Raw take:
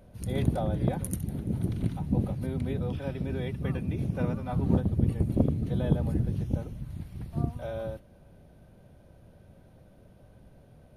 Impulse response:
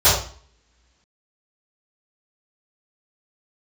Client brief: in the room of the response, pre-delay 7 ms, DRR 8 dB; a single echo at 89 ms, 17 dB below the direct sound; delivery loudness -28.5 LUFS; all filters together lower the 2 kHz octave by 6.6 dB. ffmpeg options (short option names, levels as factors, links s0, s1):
-filter_complex "[0:a]equalizer=f=2000:t=o:g=-9,aecho=1:1:89:0.141,asplit=2[s0][s1];[1:a]atrim=start_sample=2205,adelay=7[s2];[s1][s2]afir=irnorm=-1:irlink=0,volume=0.0282[s3];[s0][s3]amix=inputs=2:normalize=0,volume=0.944"